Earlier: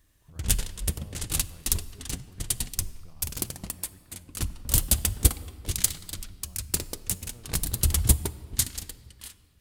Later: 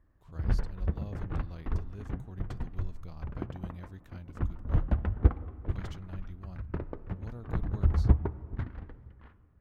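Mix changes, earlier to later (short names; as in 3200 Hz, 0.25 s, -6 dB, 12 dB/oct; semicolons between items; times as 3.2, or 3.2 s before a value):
speech +7.0 dB; background: add LPF 1500 Hz 24 dB/oct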